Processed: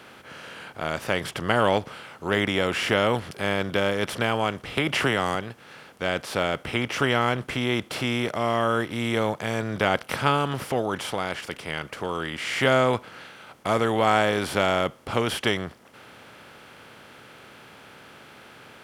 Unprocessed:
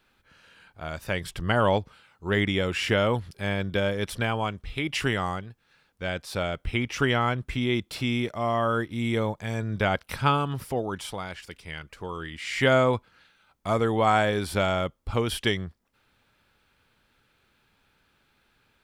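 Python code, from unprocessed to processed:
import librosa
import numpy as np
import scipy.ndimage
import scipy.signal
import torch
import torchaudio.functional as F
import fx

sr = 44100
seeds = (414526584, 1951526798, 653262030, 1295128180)

y = fx.bin_compress(x, sr, power=0.6)
y = scipy.signal.sosfilt(scipy.signal.butter(2, 120.0, 'highpass', fs=sr, output='sos'), y)
y = fx.band_squash(y, sr, depth_pct=70, at=(4.77, 5.35))
y = y * librosa.db_to_amplitude(-1.5)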